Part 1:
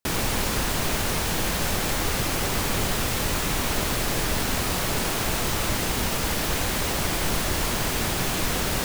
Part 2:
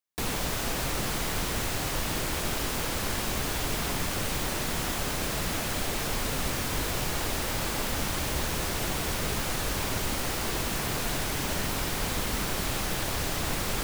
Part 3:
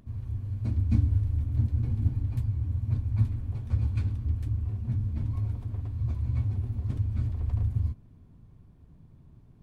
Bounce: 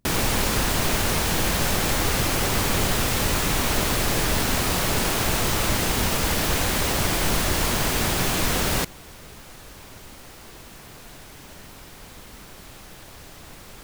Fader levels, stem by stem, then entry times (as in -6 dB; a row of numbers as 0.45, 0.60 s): +2.5, -13.5, -13.0 dB; 0.00, 0.00, 0.00 s